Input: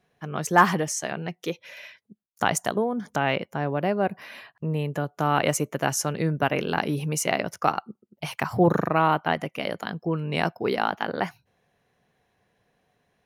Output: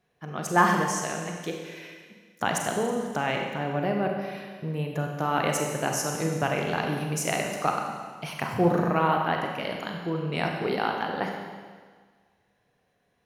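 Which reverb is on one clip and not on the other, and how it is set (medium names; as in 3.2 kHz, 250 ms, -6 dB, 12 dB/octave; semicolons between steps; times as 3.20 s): Schroeder reverb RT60 1.6 s, combs from 31 ms, DRR 1.5 dB; trim -4 dB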